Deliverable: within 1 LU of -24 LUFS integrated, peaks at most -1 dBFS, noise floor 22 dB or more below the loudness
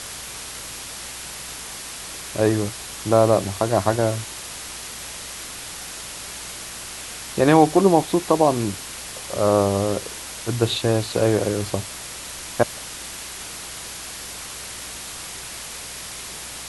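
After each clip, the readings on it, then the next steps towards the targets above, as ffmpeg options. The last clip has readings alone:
hum 60 Hz; harmonics up to 180 Hz; hum level -47 dBFS; noise floor -35 dBFS; noise floor target -46 dBFS; loudness -24.0 LUFS; peak -1.5 dBFS; loudness target -24.0 LUFS
-> -af "bandreject=f=60:t=h:w=4,bandreject=f=120:t=h:w=4,bandreject=f=180:t=h:w=4"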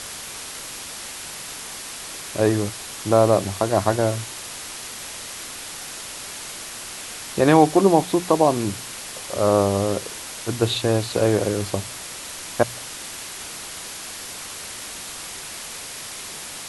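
hum none; noise floor -35 dBFS; noise floor target -46 dBFS
-> -af "afftdn=nr=11:nf=-35"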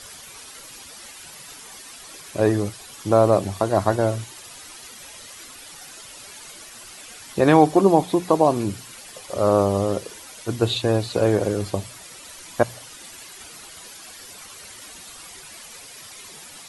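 noise floor -42 dBFS; noise floor target -43 dBFS
-> -af "afftdn=nr=6:nf=-42"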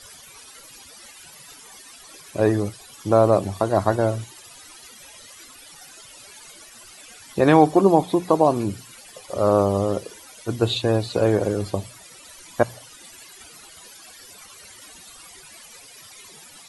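noise floor -46 dBFS; loudness -21.0 LUFS; peak -1.5 dBFS; loudness target -24.0 LUFS
-> -af "volume=-3dB"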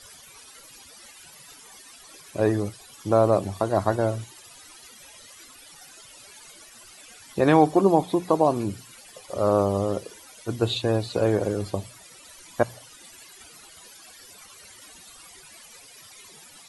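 loudness -24.0 LUFS; peak -4.5 dBFS; noise floor -49 dBFS

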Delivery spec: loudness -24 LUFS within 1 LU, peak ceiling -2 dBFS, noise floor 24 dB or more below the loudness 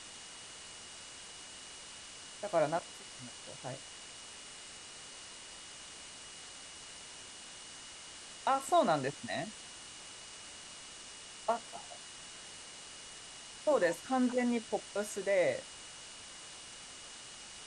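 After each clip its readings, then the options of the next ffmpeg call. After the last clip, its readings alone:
steady tone 2900 Hz; tone level -56 dBFS; noise floor -50 dBFS; noise floor target -63 dBFS; loudness -38.5 LUFS; peak -18.5 dBFS; loudness target -24.0 LUFS
-> -af "bandreject=f=2.9k:w=30"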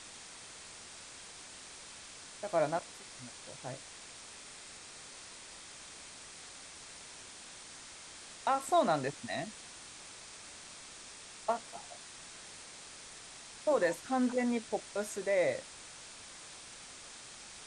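steady tone none; noise floor -51 dBFS; noise floor target -63 dBFS
-> -af "afftdn=nr=12:nf=-51"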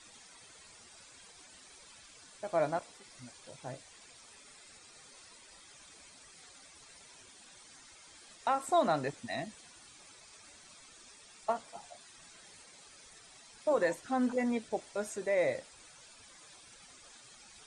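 noise floor -57 dBFS; noise floor target -58 dBFS
-> -af "afftdn=nr=6:nf=-57"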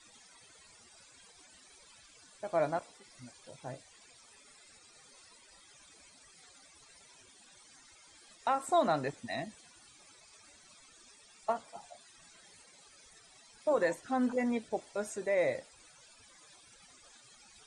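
noise floor -60 dBFS; loudness -34.0 LUFS; peak -18.5 dBFS; loudness target -24.0 LUFS
-> -af "volume=10dB"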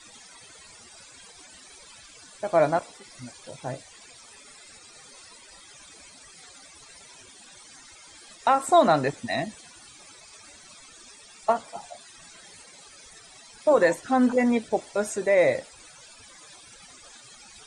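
loudness -24.0 LUFS; peak -8.5 dBFS; noise floor -50 dBFS

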